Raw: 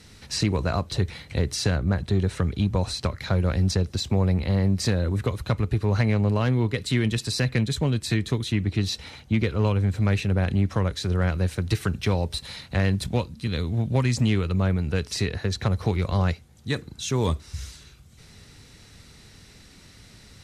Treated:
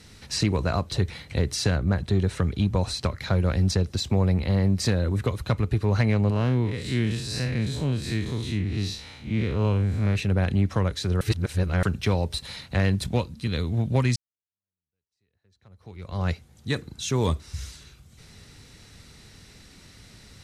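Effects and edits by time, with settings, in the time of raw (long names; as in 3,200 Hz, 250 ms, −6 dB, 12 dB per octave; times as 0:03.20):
0:06.30–0:10.16: spectrum smeared in time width 117 ms
0:11.21–0:11.83: reverse
0:14.16–0:16.32: fade in exponential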